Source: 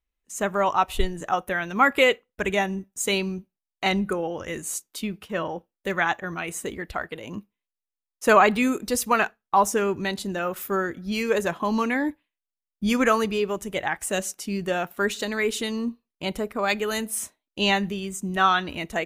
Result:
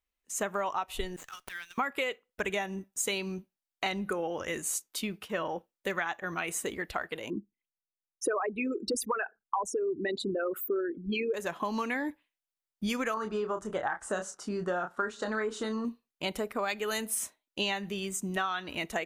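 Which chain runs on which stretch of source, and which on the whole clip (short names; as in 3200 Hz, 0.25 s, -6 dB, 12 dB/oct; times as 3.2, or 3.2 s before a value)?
1.16–1.78 HPF 1200 Hz 24 dB/oct + differentiator + running maximum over 3 samples
7.3–11.34 formant sharpening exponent 3 + bell 340 Hz +8 dB 0.83 oct
13.14–15.85 LPF 8500 Hz 24 dB/oct + resonant high shelf 1800 Hz -8 dB, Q 3 + doubler 28 ms -7 dB
whole clip: low shelf 240 Hz -9 dB; compressor 12:1, threshold -28 dBFS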